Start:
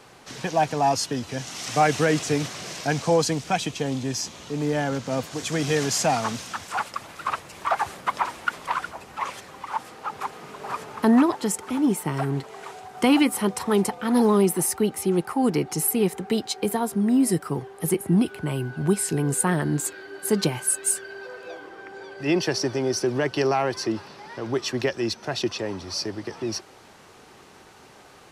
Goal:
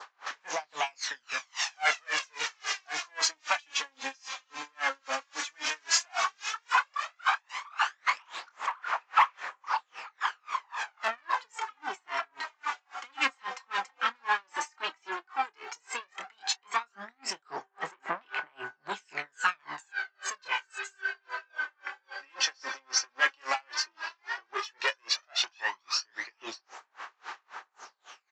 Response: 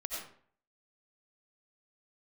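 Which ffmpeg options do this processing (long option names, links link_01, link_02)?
-filter_complex "[0:a]asplit=2[link_01][link_02];[link_02]adelay=816.3,volume=-27dB,highshelf=frequency=4000:gain=-18.4[link_03];[link_01][link_03]amix=inputs=2:normalize=0,aresample=16000,asoftclip=type=tanh:threshold=-24.5dB,aresample=44100,asplit=2[link_04][link_05];[link_05]adelay=26,volume=-8dB[link_06];[link_04][link_06]amix=inputs=2:normalize=0,aphaser=in_gain=1:out_gain=1:delay=3.8:decay=0.6:speed=0.11:type=sinusoidal,highpass=frequency=1100:width_type=q:width=1.8,equalizer=frequency=1700:width=5.9:gain=3.5,asplit=2[link_07][link_08];[link_08]asoftclip=type=hard:threshold=-18dB,volume=-7dB[link_09];[link_07][link_09]amix=inputs=2:normalize=0,adynamicequalizer=threshold=0.00891:dfrequency=2400:dqfactor=1.6:tfrequency=2400:tqfactor=1.6:attack=5:release=100:ratio=0.375:range=2.5:mode=boostabove:tftype=bell,aeval=exprs='val(0)*pow(10,-38*(0.5-0.5*cos(2*PI*3.7*n/s))/20)':channel_layout=same"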